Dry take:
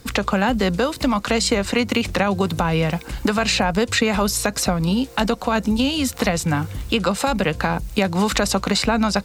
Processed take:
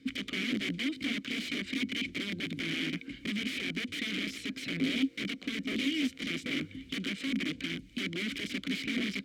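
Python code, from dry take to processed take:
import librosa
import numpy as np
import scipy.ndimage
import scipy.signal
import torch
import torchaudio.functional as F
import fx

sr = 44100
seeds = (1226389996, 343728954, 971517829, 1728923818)

y = (np.mod(10.0 ** (16.5 / 20.0) * x + 1.0, 2.0) - 1.0) / 10.0 ** (16.5 / 20.0)
y = fx.vowel_filter(y, sr, vowel='i')
y = y * 10.0 ** (2.5 / 20.0)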